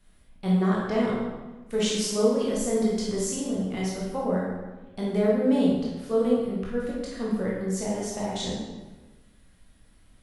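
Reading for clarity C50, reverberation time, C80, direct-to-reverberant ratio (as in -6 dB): -1.0 dB, 1.2 s, 2.5 dB, -5.5 dB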